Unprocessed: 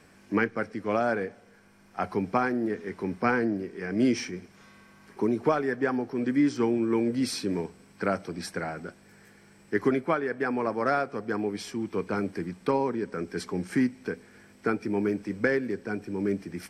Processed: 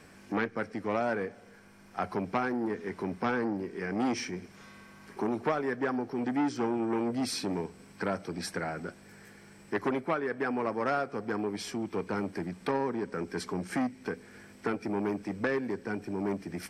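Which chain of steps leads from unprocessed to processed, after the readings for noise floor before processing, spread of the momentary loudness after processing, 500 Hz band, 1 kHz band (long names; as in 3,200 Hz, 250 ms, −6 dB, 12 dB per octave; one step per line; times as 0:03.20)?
−57 dBFS, 10 LU, −4.0 dB, −2.5 dB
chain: in parallel at +1.5 dB: downward compressor, threshold −36 dBFS, peak gain reduction 17 dB
on the sum: saturating transformer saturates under 1,000 Hz
level −4.5 dB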